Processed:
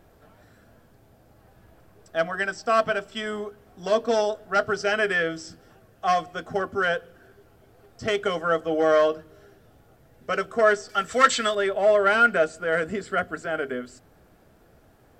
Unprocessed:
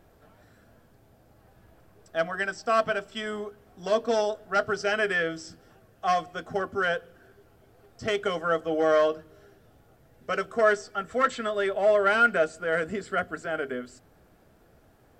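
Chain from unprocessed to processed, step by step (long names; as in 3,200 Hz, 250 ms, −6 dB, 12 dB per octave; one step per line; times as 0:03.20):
0:10.89–0:11.55: parametric band 6,300 Hz +13.5 dB 3 octaves
level +2.5 dB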